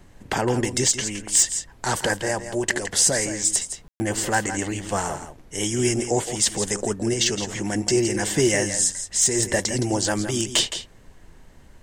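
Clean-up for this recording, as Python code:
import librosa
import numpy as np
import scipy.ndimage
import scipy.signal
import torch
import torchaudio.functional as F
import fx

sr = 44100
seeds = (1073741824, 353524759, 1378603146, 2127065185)

y = fx.fix_declip(x, sr, threshold_db=-10.0)
y = fx.fix_ambience(y, sr, seeds[0], print_start_s=10.86, print_end_s=11.36, start_s=3.88, end_s=4.0)
y = fx.noise_reduce(y, sr, print_start_s=10.86, print_end_s=11.36, reduce_db=21.0)
y = fx.fix_echo_inverse(y, sr, delay_ms=166, level_db=-10.5)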